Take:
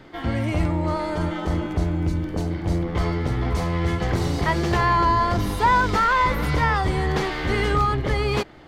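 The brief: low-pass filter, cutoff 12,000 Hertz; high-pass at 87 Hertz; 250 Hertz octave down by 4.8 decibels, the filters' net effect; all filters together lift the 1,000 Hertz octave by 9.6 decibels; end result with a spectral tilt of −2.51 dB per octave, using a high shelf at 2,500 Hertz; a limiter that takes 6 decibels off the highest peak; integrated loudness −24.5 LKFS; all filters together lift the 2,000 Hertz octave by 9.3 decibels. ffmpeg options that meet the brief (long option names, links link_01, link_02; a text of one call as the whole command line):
ffmpeg -i in.wav -af "highpass=87,lowpass=12000,equalizer=frequency=250:width_type=o:gain=-8.5,equalizer=frequency=1000:width_type=o:gain=8.5,equalizer=frequency=2000:width_type=o:gain=6.5,highshelf=frequency=2500:gain=5,volume=-6.5dB,alimiter=limit=-13dB:level=0:latency=1" out.wav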